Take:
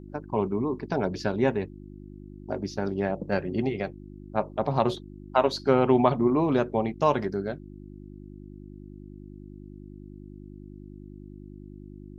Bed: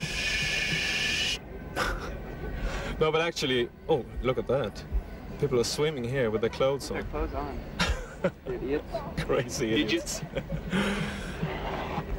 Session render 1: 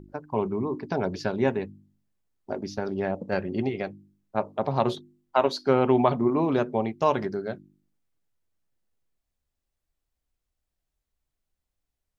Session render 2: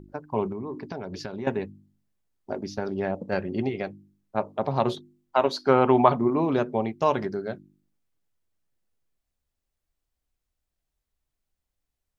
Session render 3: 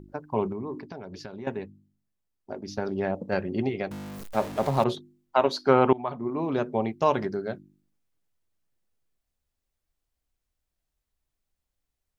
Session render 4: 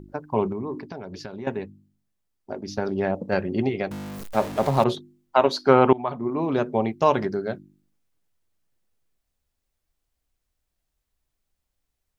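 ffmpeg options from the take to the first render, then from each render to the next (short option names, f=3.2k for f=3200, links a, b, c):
-af "bandreject=f=50:t=h:w=4,bandreject=f=100:t=h:w=4,bandreject=f=150:t=h:w=4,bandreject=f=200:t=h:w=4,bandreject=f=250:t=h:w=4,bandreject=f=300:t=h:w=4,bandreject=f=350:t=h:w=4"
-filter_complex "[0:a]asettb=1/sr,asplit=3[a][b][c];[a]atrim=end=0.524[d];[b]atrim=start=0.52:end=1.47,asetpts=PTS-STARTPTS,afade=t=in:d=0.004:c=qsin,afade=t=out:st=0.946:d=0.004:c=qsin,acompressor=threshold=-30dB:ratio=6:attack=3.2:release=140:knee=1:detection=peak[e];[c]atrim=start=1.466[f];[d][e]acrossfade=d=0.004:c1=hsin:c2=qsin[g];[g][f]acrossfade=d=0.004:c1=qsin:c2=hsin,asettb=1/sr,asplit=3[h][i][j];[h]atrim=end=5.534[k];[i]atrim=start=5.53:end=6.19,asetpts=PTS-STARTPTS,afade=t=in:d=0.004:c=qsin,afade=t=out:st=0.656:d=0.004:c=qsin,equalizer=f=1.1k:w=0.89:g=6[l];[j]atrim=start=6.186[m];[k][l]acrossfade=d=0.004:c1=hsin:c2=qsin[n];[n][m]acrossfade=d=0.004:c1=qsin:c2=hsin"
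-filter_complex "[0:a]asettb=1/sr,asplit=3[a][b][c];[a]atrim=end=3.914[d];[b]atrim=start=3.91:end=4.84,asetpts=PTS-STARTPTS,afade=t=in:d=0.004:c=qsin,afade=t=out:st=0.926:d=0.004:c=qsin,aeval=exprs='val(0)+0.5*0.0224*sgn(val(0))':c=same[e];[c]atrim=start=4.836[f];[d][e]acrossfade=d=0.004:c1=hsin:c2=qsin[g];[g][f]acrossfade=d=0.004:c1=qsin:c2=hsin,asplit=4[h][i][j][k];[h]atrim=end=0.822[l];[i]atrim=start=0.818:end=2.682,asetpts=PTS-STARTPTS,volume=-5dB[m];[j]atrim=start=2.678:end=5.93,asetpts=PTS-STARTPTS,afade=t=out:st=3.248:d=0.004:c=hsin:silence=0.0749894[n];[k]atrim=start=5.93,asetpts=PTS-STARTPTS,afade=t=in:d=0.91:silence=0.0749894[o];[l][m]acrossfade=d=0.004:c1=hsin:c2=hsin[p];[n][o]concat=n=2:v=0:a=1[q];[p][q]acrossfade=d=0.004:c1=hsin:c2=hsin"
-af "volume=3.5dB"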